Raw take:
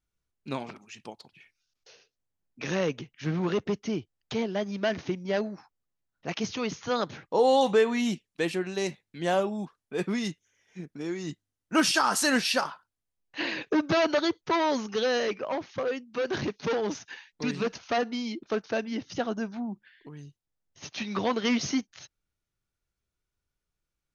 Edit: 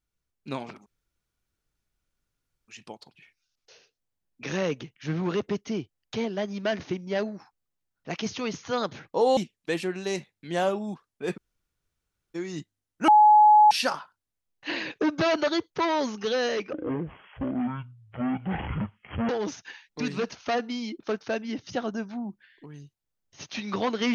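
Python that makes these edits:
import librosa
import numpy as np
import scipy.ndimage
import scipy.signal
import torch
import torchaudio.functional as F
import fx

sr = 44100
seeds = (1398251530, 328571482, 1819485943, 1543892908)

y = fx.edit(x, sr, fx.insert_room_tone(at_s=0.86, length_s=1.82),
    fx.cut(start_s=7.55, length_s=0.53),
    fx.room_tone_fill(start_s=10.08, length_s=0.98, crossfade_s=0.02),
    fx.bleep(start_s=11.79, length_s=0.63, hz=846.0, db=-12.0),
    fx.speed_span(start_s=15.44, length_s=1.28, speed=0.5), tone=tone)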